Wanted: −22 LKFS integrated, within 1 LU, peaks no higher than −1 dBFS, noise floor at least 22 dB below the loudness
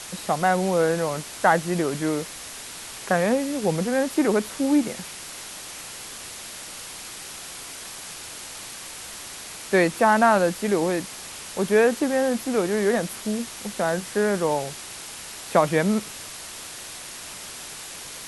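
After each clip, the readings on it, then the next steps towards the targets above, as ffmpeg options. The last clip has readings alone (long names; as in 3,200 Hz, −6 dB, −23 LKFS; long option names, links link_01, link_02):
background noise floor −38 dBFS; target noise floor −47 dBFS; integrated loudness −24.5 LKFS; sample peak −4.5 dBFS; target loudness −22.0 LKFS
→ -af "afftdn=noise_reduction=9:noise_floor=-38"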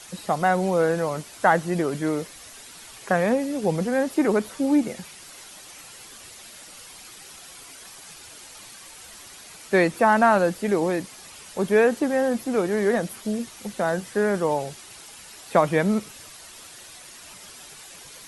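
background noise floor −45 dBFS; integrated loudness −23.0 LKFS; sample peak −4.5 dBFS; target loudness −22.0 LKFS
→ -af "volume=1dB"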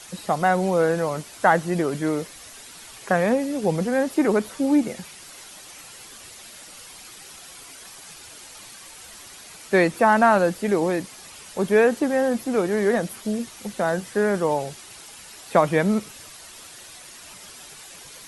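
integrated loudness −22.0 LKFS; sample peak −3.5 dBFS; background noise floor −44 dBFS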